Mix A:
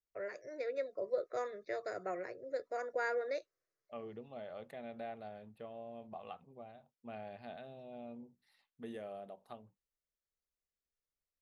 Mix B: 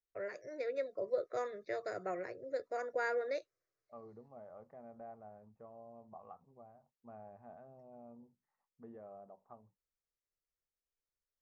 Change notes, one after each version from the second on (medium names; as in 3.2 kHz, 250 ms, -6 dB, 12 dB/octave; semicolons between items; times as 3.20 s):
second voice: add four-pole ladder low-pass 1.3 kHz, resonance 45%; master: add bass shelf 120 Hz +8.5 dB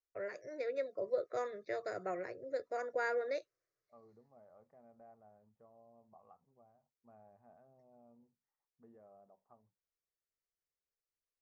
second voice -9.0 dB